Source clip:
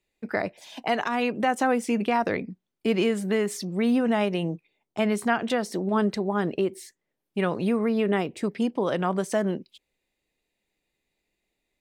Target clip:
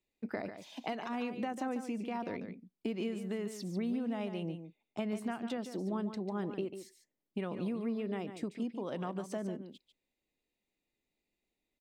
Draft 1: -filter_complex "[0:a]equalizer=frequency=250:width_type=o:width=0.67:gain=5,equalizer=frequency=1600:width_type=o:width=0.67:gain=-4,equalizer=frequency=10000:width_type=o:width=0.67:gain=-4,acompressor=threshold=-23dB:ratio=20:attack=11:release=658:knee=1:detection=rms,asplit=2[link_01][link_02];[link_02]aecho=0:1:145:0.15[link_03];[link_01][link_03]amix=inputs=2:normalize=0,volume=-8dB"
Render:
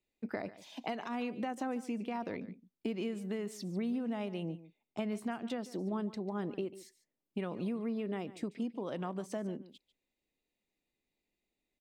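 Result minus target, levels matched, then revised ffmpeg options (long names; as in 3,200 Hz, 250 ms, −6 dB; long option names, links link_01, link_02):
echo-to-direct −7 dB
-filter_complex "[0:a]equalizer=frequency=250:width_type=o:width=0.67:gain=5,equalizer=frequency=1600:width_type=o:width=0.67:gain=-4,equalizer=frequency=10000:width_type=o:width=0.67:gain=-4,acompressor=threshold=-23dB:ratio=20:attack=11:release=658:knee=1:detection=rms,asplit=2[link_01][link_02];[link_02]aecho=0:1:145:0.335[link_03];[link_01][link_03]amix=inputs=2:normalize=0,volume=-8dB"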